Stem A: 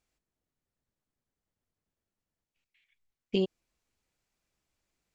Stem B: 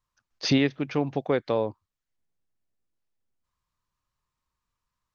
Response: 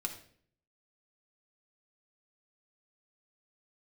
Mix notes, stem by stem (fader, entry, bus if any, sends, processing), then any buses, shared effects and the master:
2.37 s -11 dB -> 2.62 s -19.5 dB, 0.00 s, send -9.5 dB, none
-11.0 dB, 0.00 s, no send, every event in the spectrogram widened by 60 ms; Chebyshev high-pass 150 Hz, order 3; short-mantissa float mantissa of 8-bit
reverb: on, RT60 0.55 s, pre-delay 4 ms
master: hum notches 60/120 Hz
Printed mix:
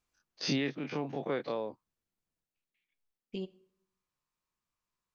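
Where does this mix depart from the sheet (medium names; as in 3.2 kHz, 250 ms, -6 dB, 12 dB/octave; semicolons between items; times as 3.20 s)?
stem A -11.0 dB -> -5.0 dB; master: missing hum notches 60/120 Hz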